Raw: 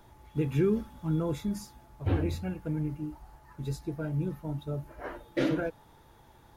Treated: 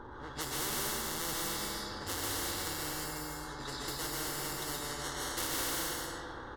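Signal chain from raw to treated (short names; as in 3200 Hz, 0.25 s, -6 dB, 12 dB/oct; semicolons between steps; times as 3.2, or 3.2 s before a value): downsampling 11025 Hz; in parallel at -5 dB: sample-and-hold 18×; on the sum: hard clip -25 dBFS, distortion -9 dB; fixed phaser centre 660 Hz, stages 6; pre-echo 0.156 s -14.5 dB; plate-style reverb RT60 1.4 s, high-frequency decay 0.95×, pre-delay 0.115 s, DRR -5 dB; low-pass opened by the level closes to 1800 Hz, open at -29 dBFS; spectral compressor 4:1; gain -2 dB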